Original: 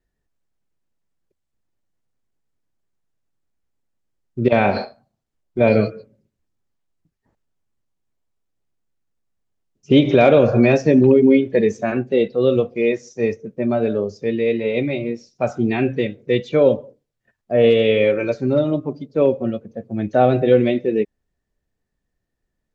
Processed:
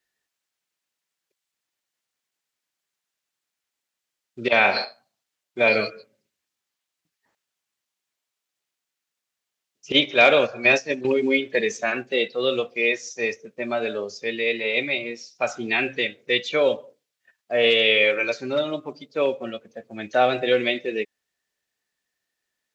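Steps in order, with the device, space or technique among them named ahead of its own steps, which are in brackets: filter by subtraction (in parallel: low-pass 3 kHz 12 dB/octave + polarity flip); 9.92–11.05 s: on the sum: gate -25 dBFS, range -11 dB; trim +6.5 dB

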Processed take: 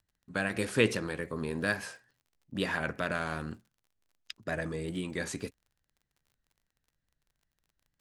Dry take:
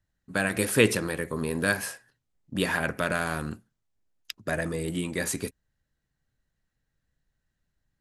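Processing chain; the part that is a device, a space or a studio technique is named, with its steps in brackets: lo-fi chain (low-pass 6.7 kHz 12 dB/octave; wow and flutter; crackle 37 per s -49 dBFS); trim -5 dB

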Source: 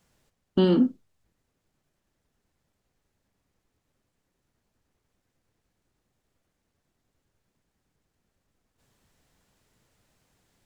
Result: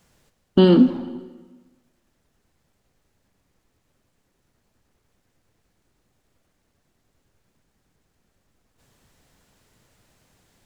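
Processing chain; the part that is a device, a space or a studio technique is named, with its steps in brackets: saturated reverb return (on a send at -12 dB: reverberation RT60 1.3 s, pre-delay 120 ms + saturation -21.5 dBFS, distortion -12 dB); on the sum: trim +7 dB

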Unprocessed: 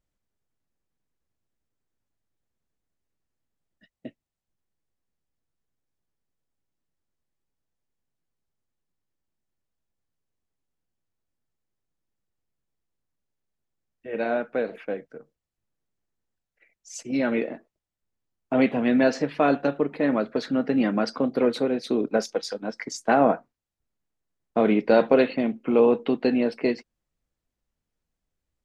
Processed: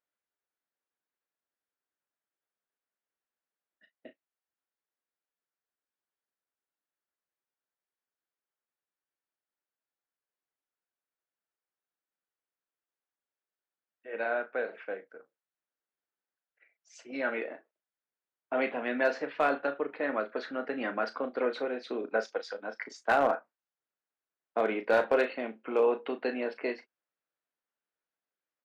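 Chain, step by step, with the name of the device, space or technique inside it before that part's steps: megaphone (band-pass 460–3400 Hz; peaking EQ 1.5 kHz +5.5 dB 0.6 oct; hard clipper -12 dBFS, distortion -23 dB; doubling 36 ms -11 dB); trim -5 dB

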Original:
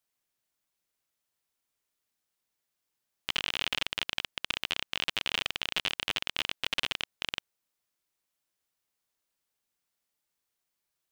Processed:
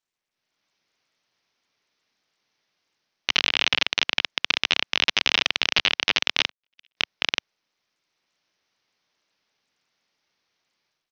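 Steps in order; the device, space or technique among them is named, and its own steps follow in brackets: peaking EQ 2.2 kHz +3 dB 0.49 oct; 6.49–6.97 s: gate -24 dBFS, range -58 dB; Bluetooth headset (high-pass 120 Hz 12 dB/octave; level rider gain up to 13 dB; resampled via 16 kHz; trim -1 dB; SBC 64 kbps 48 kHz)

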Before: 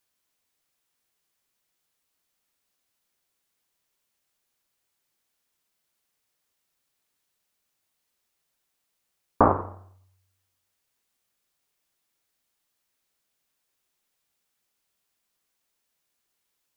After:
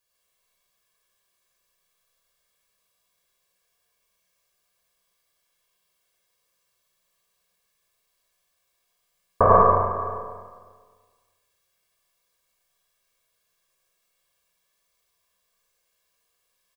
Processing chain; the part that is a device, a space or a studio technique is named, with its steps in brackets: microphone above a desk (comb 1.8 ms, depth 81%; reverberation RT60 0.35 s, pre-delay 86 ms, DRR -1 dB); delay 548 ms -21 dB; Schroeder reverb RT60 1.6 s, combs from 32 ms, DRR -0.5 dB; trim -3 dB

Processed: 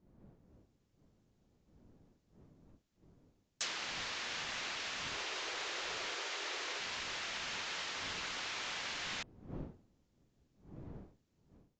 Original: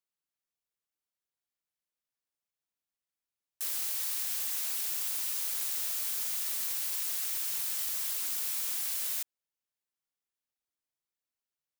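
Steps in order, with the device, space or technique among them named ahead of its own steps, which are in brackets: low-pass that closes with the level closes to 2.8 kHz, closed at -30 dBFS; 5.14–6.80 s: resonant low shelf 260 Hz -12.5 dB, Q 3; smartphone video outdoors (wind noise 250 Hz -66 dBFS; level rider gain up to 7.5 dB; trim +1 dB; AAC 64 kbps 16 kHz)

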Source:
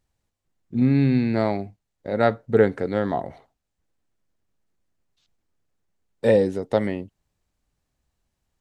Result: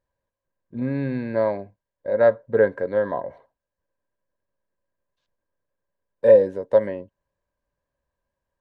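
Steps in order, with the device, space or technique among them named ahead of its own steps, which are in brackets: inside a helmet (treble shelf 4 kHz -8 dB; small resonant body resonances 560/990/1600 Hz, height 17 dB, ringing for 35 ms); trim -8.5 dB

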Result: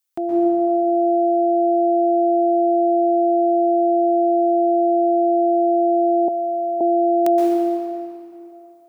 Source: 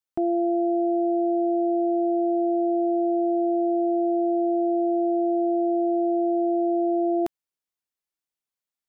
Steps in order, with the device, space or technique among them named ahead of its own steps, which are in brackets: stairwell (reverberation RT60 2.8 s, pre-delay 116 ms, DRR -4 dB); 6.28–6.81 s: Bessel high-pass 770 Hz, order 2; tilt EQ +3 dB/octave; trim +3.5 dB

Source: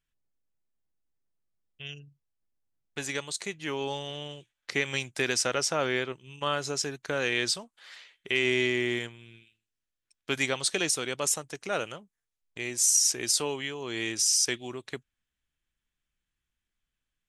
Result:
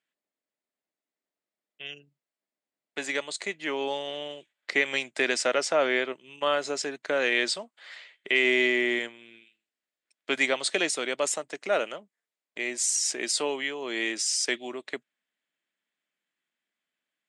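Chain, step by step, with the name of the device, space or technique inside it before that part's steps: television speaker (cabinet simulation 220–8300 Hz, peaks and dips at 620 Hz +7 dB, 2 kHz +5 dB, 5.9 kHz -8 dB); trim +1.5 dB

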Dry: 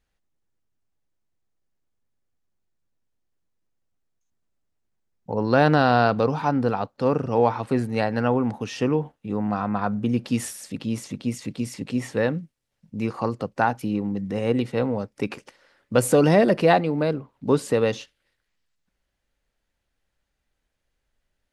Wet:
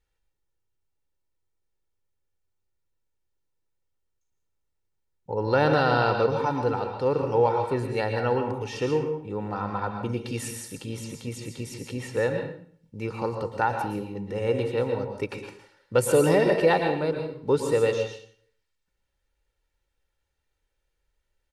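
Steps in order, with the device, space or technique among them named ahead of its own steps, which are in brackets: microphone above a desk (comb 2.2 ms, depth 57%; reverberation RT60 0.55 s, pre-delay 108 ms, DRR 4 dB); trim -4.5 dB

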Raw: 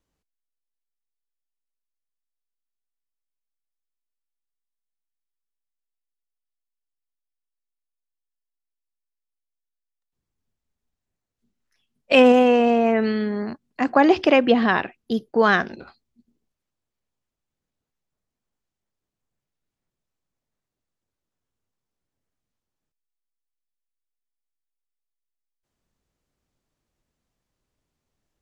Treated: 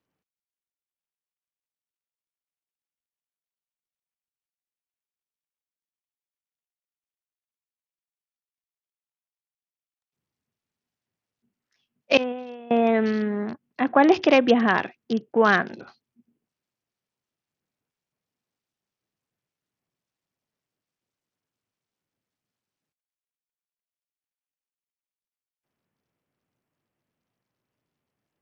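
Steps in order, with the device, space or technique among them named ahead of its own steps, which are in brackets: 12.17–12.71 s: expander -2 dBFS; Bluetooth headset (high-pass 100 Hz 24 dB/octave; resampled via 16 kHz; trim -1 dB; SBC 64 kbps 48 kHz)

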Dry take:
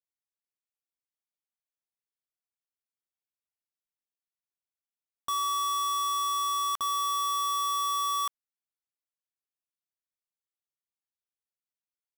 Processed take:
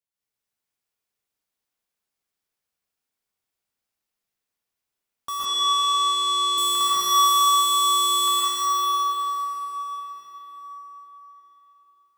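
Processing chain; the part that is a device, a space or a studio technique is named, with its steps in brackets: cathedral (reverberation RT60 5.3 s, pre-delay 110 ms, DRR -11.5 dB); 5.45–6.58 s: three-band isolator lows -14 dB, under 280 Hz, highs -19 dB, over 7.3 kHz

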